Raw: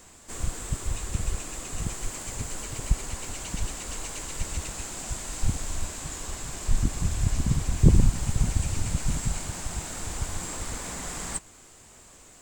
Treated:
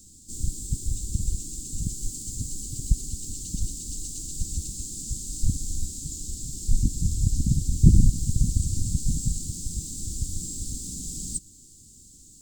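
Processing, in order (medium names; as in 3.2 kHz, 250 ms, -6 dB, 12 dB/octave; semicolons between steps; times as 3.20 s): inverse Chebyshev band-stop 780–1700 Hz, stop band 70 dB; trim +2 dB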